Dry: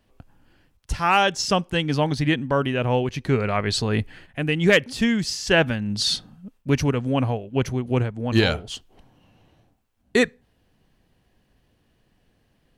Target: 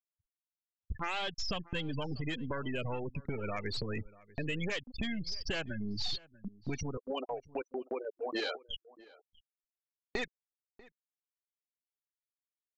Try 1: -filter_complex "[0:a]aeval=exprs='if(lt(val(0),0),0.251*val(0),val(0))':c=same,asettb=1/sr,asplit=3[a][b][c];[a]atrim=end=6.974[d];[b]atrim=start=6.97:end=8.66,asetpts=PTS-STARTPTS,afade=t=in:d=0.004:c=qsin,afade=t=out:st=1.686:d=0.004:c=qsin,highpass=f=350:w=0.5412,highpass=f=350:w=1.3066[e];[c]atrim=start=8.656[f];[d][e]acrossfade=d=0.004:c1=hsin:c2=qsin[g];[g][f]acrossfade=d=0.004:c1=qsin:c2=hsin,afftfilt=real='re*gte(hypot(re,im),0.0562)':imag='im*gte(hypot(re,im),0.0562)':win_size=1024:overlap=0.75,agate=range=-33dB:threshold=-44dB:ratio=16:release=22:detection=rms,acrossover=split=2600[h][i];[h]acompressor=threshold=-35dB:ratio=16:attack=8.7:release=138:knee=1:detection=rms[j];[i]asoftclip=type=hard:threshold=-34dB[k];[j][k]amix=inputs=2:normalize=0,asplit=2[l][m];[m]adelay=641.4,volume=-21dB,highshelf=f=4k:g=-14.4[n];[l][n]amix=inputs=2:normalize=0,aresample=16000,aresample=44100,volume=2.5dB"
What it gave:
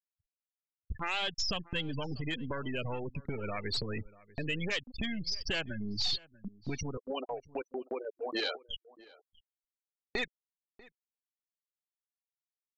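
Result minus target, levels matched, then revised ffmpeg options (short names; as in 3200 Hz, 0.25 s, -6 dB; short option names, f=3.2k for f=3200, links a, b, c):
hard clip: distortion -4 dB
-filter_complex "[0:a]aeval=exprs='if(lt(val(0),0),0.251*val(0),val(0))':c=same,asettb=1/sr,asplit=3[a][b][c];[a]atrim=end=6.974[d];[b]atrim=start=6.97:end=8.66,asetpts=PTS-STARTPTS,afade=t=in:d=0.004:c=qsin,afade=t=out:st=1.686:d=0.004:c=qsin,highpass=f=350:w=0.5412,highpass=f=350:w=1.3066[e];[c]atrim=start=8.656[f];[d][e]acrossfade=d=0.004:c1=hsin:c2=qsin[g];[g][f]acrossfade=d=0.004:c1=qsin:c2=hsin,afftfilt=real='re*gte(hypot(re,im),0.0562)':imag='im*gte(hypot(re,im),0.0562)':win_size=1024:overlap=0.75,agate=range=-33dB:threshold=-44dB:ratio=16:release=22:detection=rms,acrossover=split=2600[h][i];[h]acompressor=threshold=-35dB:ratio=16:attack=8.7:release=138:knee=1:detection=rms[j];[i]asoftclip=type=hard:threshold=-41dB[k];[j][k]amix=inputs=2:normalize=0,asplit=2[l][m];[m]adelay=641.4,volume=-21dB,highshelf=f=4k:g=-14.4[n];[l][n]amix=inputs=2:normalize=0,aresample=16000,aresample=44100,volume=2.5dB"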